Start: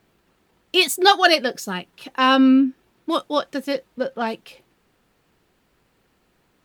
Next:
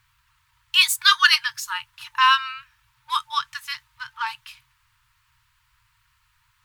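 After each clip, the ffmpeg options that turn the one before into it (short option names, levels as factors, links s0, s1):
-af "afftfilt=real='re*(1-between(b*sr/4096,130,890))':imag='im*(1-between(b*sr/4096,130,890))':win_size=4096:overlap=0.75,volume=1.26"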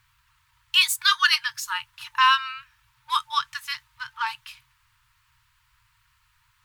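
-af "alimiter=limit=0.473:level=0:latency=1:release=468"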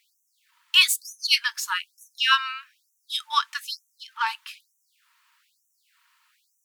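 -af "afftfilt=real='re*gte(b*sr/1024,480*pow(5800/480,0.5+0.5*sin(2*PI*1.1*pts/sr)))':imag='im*gte(b*sr/1024,480*pow(5800/480,0.5+0.5*sin(2*PI*1.1*pts/sr)))':win_size=1024:overlap=0.75,volume=1.26"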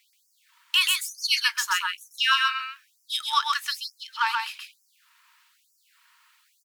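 -filter_complex "[0:a]acrossover=split=1300|2600|5600[s0][s1][s2][s3];[s0]acompressor=threshold=0.0447:ratio=4[s4];[s1]acompressor=threshold=0.0447:ratio=4[s5];[s2]acompressor=threshold=0.0224:ratio=4[s6];[s3]acompressor=threshold=0.0224:ratio=4[s7];[s4][s5][s6][s7]amix=inputs=4:normalize=0,aecho=1:1:130:0.668,volume=1.33"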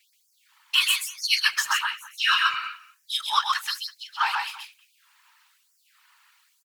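-filter_complex "[0:a]asplit=2[s0][s1];[s1]adelay=200,highpass=300,lowpass=3400,asoftclip=type=hard:threshold=0.158,volume=0.126[s2];[s0][s2]amix=inputs=2:normalize=0,afftfilt=real='hypot(re,im)*cos(2*PI*random(0))':imag='hypot(re,im)*sin(2*PI*random(1))':win_size=512:overlap=0.75,volume=2.11"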